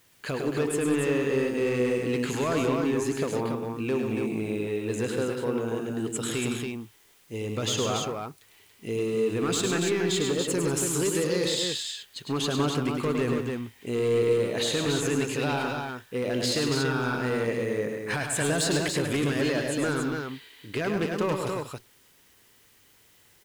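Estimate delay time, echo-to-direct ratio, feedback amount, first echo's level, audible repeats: 0.104 s, -1.5 dB, no steady repeat, -5.5 dB, 4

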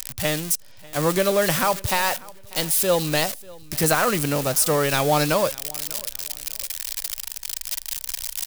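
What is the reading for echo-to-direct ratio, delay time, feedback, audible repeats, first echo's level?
-22.0 dB, 0.593 s, 29%, 2, -22.5 dB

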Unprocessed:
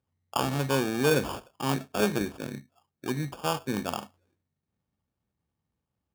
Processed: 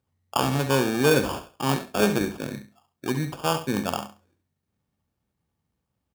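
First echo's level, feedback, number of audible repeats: -11.0 dB, 21%, 2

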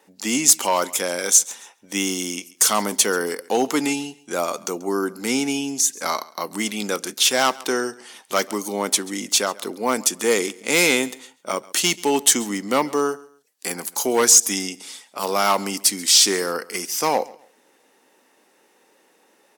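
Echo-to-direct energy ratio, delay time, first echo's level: -21.0 dB, 0.136 s, -21.5 dB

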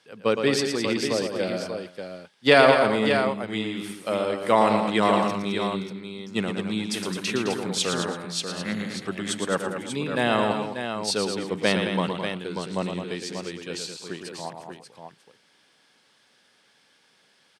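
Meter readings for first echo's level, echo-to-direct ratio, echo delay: -7.0 dB, -2.5 dB, 0.114 s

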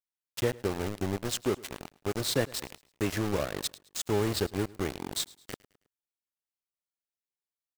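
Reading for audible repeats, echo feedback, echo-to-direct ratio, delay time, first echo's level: 2, 41%, -21.0 dB, 0.107 s, -22.0 dB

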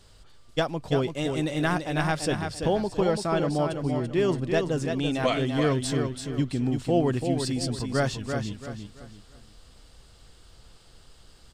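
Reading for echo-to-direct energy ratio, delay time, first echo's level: -5.5 dB, 0.337 s, -6.0 dB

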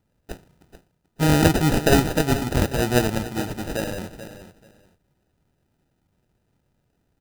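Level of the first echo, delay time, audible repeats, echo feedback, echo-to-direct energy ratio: -12.5 dB, 0.435 s, 2, 18%, -12.5 dB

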